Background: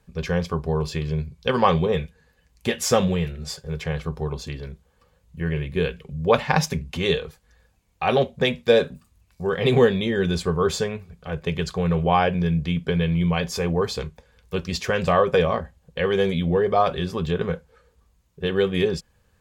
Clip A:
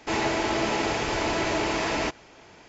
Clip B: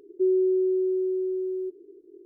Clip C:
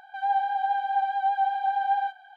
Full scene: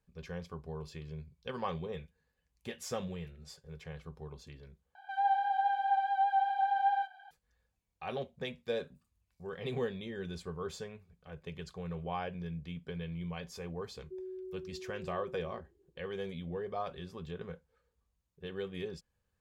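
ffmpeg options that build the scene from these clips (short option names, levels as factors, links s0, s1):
-filter_complex "[0:a]volume=0.119[s0];[2:a]lowshelf=f=390:g=-8.5[s1];[s0]asplit=2[s2][s3];[s2]atrim=end=4.954[s4];[3:a]atrim=end=2.36,asetpts=PTS-STARTPTS,volume=0.596[s5];[s3]atrim=start=7.306[s6];[s1]atrim=end=2.25,asetpts=PTS-STARTPTS,volume=0.141,afade=t=in:d=0.004:c=hsin,afade=t=out:st=2.246:d=0.004:c=hsin,adelay=13910[s7];[s4][s5]acrossfade=d=0.004:c1=hsin:c2=hsin[s8];[s8][s6]acrossfade=d=0.004:c1=hsin:c2=hsin[s9];[s9][s7]amix=inputs=2:normalize=0"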